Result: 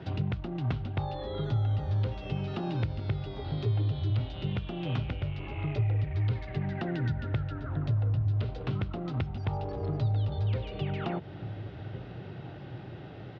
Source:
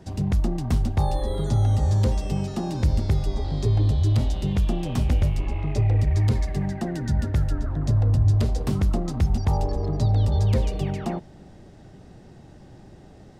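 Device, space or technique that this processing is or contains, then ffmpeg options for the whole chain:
bass amplifier: -filter_complex "[0:a]highshelf=frequency=2400:width_type=q:width=1.5:gain=13.5,asettb=1/sr,asplit=3[link_01][link_02][link_03];[link_01]atrim=end=3.574[link_04];[link_02]atrim=start=3.57:end=4.1,asetpts=PTS-STARTPTS,afade=type=in:duration=0.004:curve=qsin,afade=type=out:start_time=0.526:duration=0.004:curve=qsin,highpass=82[link_05];[link_03]atrim=start=4.096[link_06];[link_04][link_05]acrossfade=duration=0.004:curve1=hsin:curve2=qsin[link_07];[link_07][link_06]acrossfade=duration=0.004:curve1=qsin:curve2=hsin,asplit=2[link_08][link_09];[link_09]adelay=1399,volume=-26dB,highshelf=frequency=4000:gain=-31.5[link_10];[link_08][link_10]amix=inputs=2:normalize=0,acompressor=threshold=-31dB:ratio=6,highpass=frequency=65:width=0.5412,highpass=frequency=65:width=1.3066,equalizer=frequency=70:width_type=q:width=4:gain=-10,equalizer=frequency=120:width_type=q:width=4:gain=5,equalizer=frequency=220:width_type=q:width=4:gain=-8,equalizer=frequency=1400:width_type=q:width=4:gain=10,lowpass=frequency=2400:width=0.5412,lowpass=frequency=2400:width=1.3066,volume=4.5dB"

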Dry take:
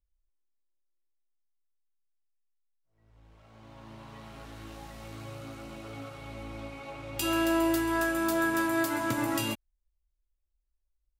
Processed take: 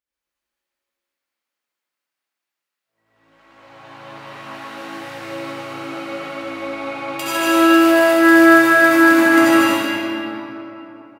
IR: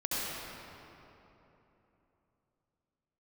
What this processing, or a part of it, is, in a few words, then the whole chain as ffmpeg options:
stadium PA: -filter_complex "[0:a]highpass=230,equalizer=frequency=1900:width_type=o:width=2.1:gain=8,aecho=1:1:151.6|233.2:0.708|0.631[link_01];[1:a]atrim=start_sample=2205[link_02];[link_01][link_02]afir=irnorm=-1:irlink=0,volume=1dB"

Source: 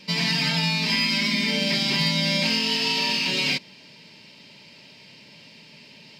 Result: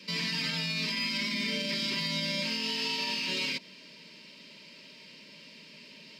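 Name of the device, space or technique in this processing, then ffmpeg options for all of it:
PA system with an anti-feedback notch: -af "highpass=frequency=170:width=0.5412,highpass=frequency=170:width=1.3066,asuperstop=centerf=780:order=20:qfactor=3.3,alimiter=limit=-20.5dB:level=0:latency=1:release=74,volume=-2.5dB"

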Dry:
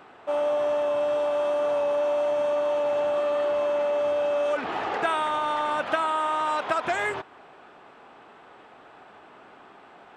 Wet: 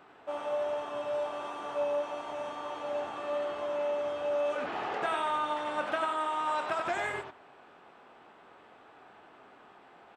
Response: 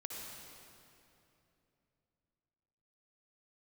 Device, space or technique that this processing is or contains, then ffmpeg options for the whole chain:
slapback doubling: -filter_complex "[0:a]asplit=3[link_01][link_02][link_03];[link_02]adelay=23,volume=-8.5dB[link_04];[link_03]adelay=93,volume=-4.5dB[link_05];[link_01][link_04][link_05]amix=inputs=3:normalize=0,volume=-7.5dB"

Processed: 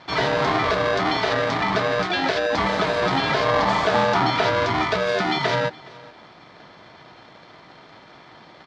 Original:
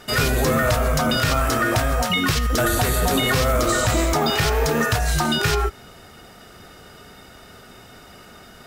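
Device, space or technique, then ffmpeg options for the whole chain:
ring modulator pedal into a guitar cabinet: -filter_complex "[0:a]bandreject=frequency=1300:width=7,aeval=exprs='val(0)*sgn(sin(2*PI*540*n/s))':channel_layout=same,highpass=80,equalizer=frequency=81:width_type=q:width=4:gain=-9,equalizer=frequency=440:width_type=q:width=4:gain=-4,equalizer=frequency=2700:width_type=q:width=4:gain=-7,lowpass=frequency=4200:width=0.5412,lowpass=frequency=4200:width=1.3066,asettb=1/sr,asplit=3[link_01][link_02][link_03];[link_01]atrim=end=3.464[link_04];[link_02]atrim=start=3.46:end=4.5,asetpts=PTS-STARTPTS,afade=type=in:duration=0.004:curve=qsin,afade=type=out:start_time=1.036:duration=0.004:curve=qsin,equalizer=frequency=820:width=2.2:gain=5.5[link_05];[link_03]atrim=start=4.496[link_06];[link_04][link_05]acrossfade=duration=0.004:curve1=hsin:curve2=qsin[link_07];[link_07][link_06]acrossfade=duration=0.004:curve1=qsin:curve2=hsin,aecho=1:1:419:0.075"

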